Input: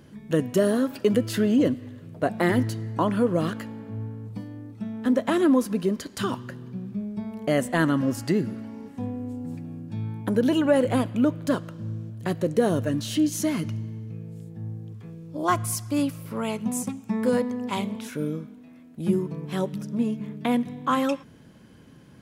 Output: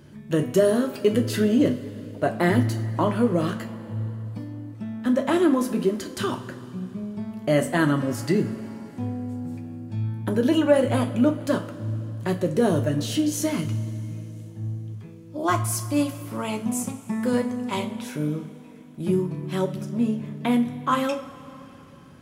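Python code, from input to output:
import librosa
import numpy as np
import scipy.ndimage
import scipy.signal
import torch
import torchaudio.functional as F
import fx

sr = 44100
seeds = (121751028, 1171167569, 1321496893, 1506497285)

y = fx.rev_double_slope(x, sr, seeds[0], early_s=0.3, late_s=3.5, knee_db=-20, drr_db=4.0)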